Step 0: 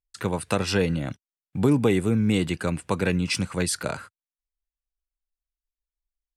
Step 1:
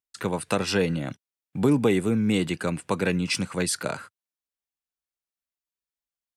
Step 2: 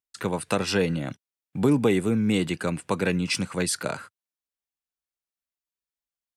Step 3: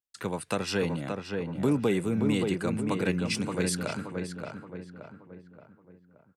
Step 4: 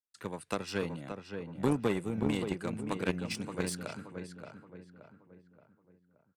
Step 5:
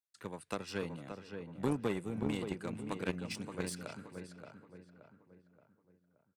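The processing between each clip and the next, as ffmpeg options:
-af "highpass=130"
-af anull
-filter_complex "[0:a]asplit=2[s0][s1];[s1]adelay=575,lowpass=f=2000:p=1,volume=0.631,asplit=2[s2][s3];[s3]adelay=575,lowpass=f=2000:p=1,volume=0.47,asplit=2[s4][s5];[s5]adelay=575,lowpass=f=2000:p=1,volume=0.47,asplit=2[s6][s7];[s7]adelay=575,lowpass=f=2000:p=1,volume=0.47,asplit=2[s8][s9];[s9]adelay=575,lowpass=f=2000:p=1,volume=0.47,asplit=2[s10][s11];[s11]adelay=575,lowpass=f=2000:p=1,volume=0.47[s12];[s0][s2][s4][s6][s8][s10][s12]amix=inputs=7:normalize=0,volume=0.562"
-af "aeval=exprs='0.2*(cos(1*acos(clip(val(0)/0.2,-1,1)))-cos(1*PI/2))+0.0447*(cos(3*acos(clip(val(0)/0.2,-1,1)))-cos(3*PI/2))':c=same"
-af "aecho=1:1:455:0.0891,volume=0.596"

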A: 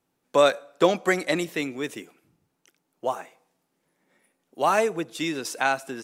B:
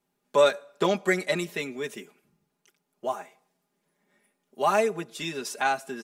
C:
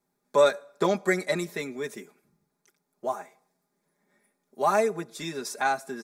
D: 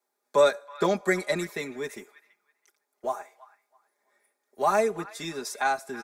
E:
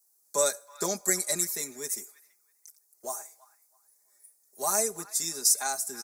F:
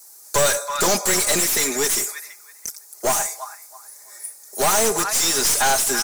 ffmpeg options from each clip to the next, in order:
-af "aecho=1:1:4.9:0.83,volume=0.596"
-af "equalizer=f=2900:w=5:g=-15"
-filter_complex "[0:a]acrossover=split=350|1000|5100[s0][s1][s2][s3];[s0]aeval=exprs='sgn(val(0))*max(abs(val(0))-0.00251,0)':c=same[s4];[s2]asplit=2[s5][s6];[s6]adelay=327,lowpass=f=1600:p=1,volume=0.299,asplit=2[s7][s8];[s8]adelay=327,lowpass=f=1600:p=1,volume=0.29,asplit=2[s9][s10];[s10]adelay=327,lowpass=f=1600:p=1,volume=0.29[s11];[s5][s7][s9][s11]amix=inputs=4:normalize=0[s12];[s4][s1][s12][s3]amix=inputs=4:normalize=0"
-af "aexciter=amount=14.6:drive=5.6:freq=4800,volume=0.398"
-filter_complex "[0:a]asplit=2[s0][s1];[s1]highpass=f=720:p=1,volume=44.7,asoftclip=type=tanh:threshold=0.422[s2];[s0][s2]amix=inputs=2:normalize=0,lowpass=f=5100:p=1,volume=0.501,aeval=exprs='clip(val(0),-1,0.075)':c=same,volume=1.19"

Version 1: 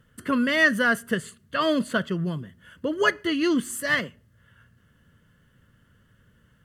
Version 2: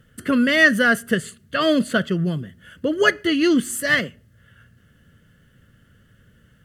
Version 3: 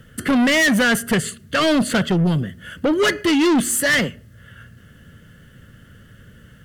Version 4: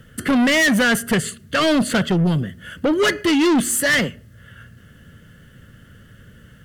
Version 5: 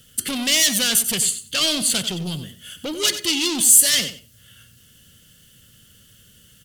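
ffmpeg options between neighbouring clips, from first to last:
-af "equalizer=f=1000:t=o:w=0.35:g=-11.5,volume=1.88"
-filter_complex "[0:a]acrossover=split=580|1800[s0][s1][s2];[s1]alimiter=limit=0.112:level=0:latency=1:release=182[s3];[s0][s3][s2]amix=inputs=3:normalize=0,asoftclip=type=tanh:threshold=0.075,volume=2.82"
-af anull
-filter_complex "[0:a]aexciter=amount=9.3:drive=3.1:freq=2600,asplit=2[s0][s1];[s1]aecho=0:1:93|186:0.251|0.0402[s2];[s0][s2]amix=inputs=2:normalize=0,volume=0.282"

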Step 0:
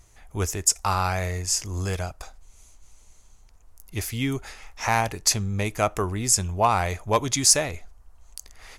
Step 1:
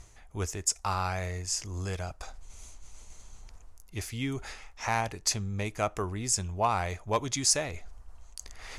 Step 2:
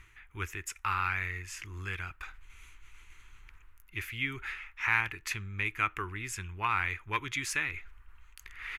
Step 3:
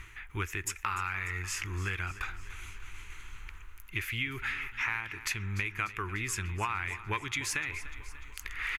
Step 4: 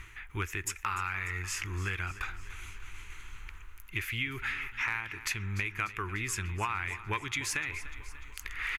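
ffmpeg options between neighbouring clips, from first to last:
-af "lowpass=9500,areverse,acompressor=mode=upward:threshold=0.0447:ratio=2.5,areverse,volume=0.473"
-af "firequalizer=gain_entry='entry(110,0);entry(230,-7);entry(330,2);entry(620,-18);entry(930,1);entry(1400,12);entry(2400,15);entry(4900,-9);entry(9300,-6);entry(14000,10)':delay=0.05:min_phase=1,volume=0.501"
-af "acompressor=threshold=0.0112:ratio=6,aecho=1:1:296|592|888|1184|1480|1776:0.168|0.101|0.0604|0.0363|0.0218|0.0131,volume=2.66"
-af "asoftclip=type=hard:threshold=0.106"

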